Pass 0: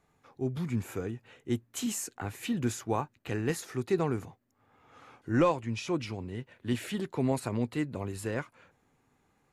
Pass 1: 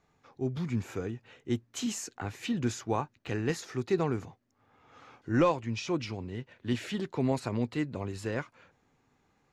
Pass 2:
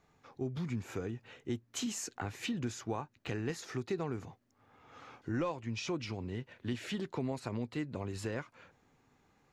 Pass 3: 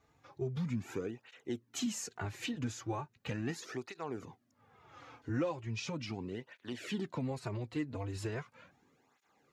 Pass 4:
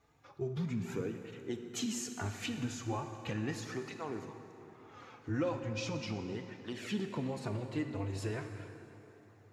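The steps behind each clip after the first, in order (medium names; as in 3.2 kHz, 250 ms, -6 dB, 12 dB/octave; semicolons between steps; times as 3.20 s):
resonant high shelf 7.7 kHz -9 dB, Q 1.5
compression 3:1, threshold -36 dBFS, peak gain reduction 12 dB; trim +1 dB
cancelling through-zero flanger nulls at 0.38 Hz, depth 5.6 ms; trim +2 dB
plate-style reverb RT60 3.4 s, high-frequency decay 0.65×, pre-delay 0 ms, DRR 6 dB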